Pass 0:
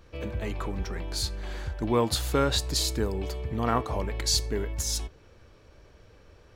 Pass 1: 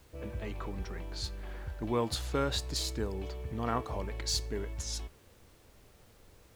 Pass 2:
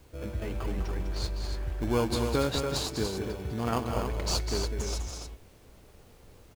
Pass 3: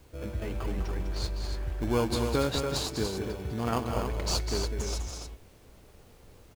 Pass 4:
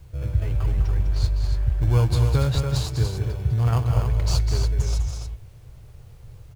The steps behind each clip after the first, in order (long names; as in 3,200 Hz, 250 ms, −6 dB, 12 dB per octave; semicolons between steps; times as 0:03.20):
running median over 3 samples; low-pass that shuts in the quiet parts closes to 510 Hz, open at −24.5 dBFS; background noise pink −56 dBFS; level −6.5 dB
in parallel at −4 dB: decimation without filtering 23×; on the sum: loudspeakers that aren't time-aligned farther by 69 metres −7 dB, 98 metres −7 dB
no processing that can be heard
low shelf with overshoot 170 Hz +10 dB, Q 3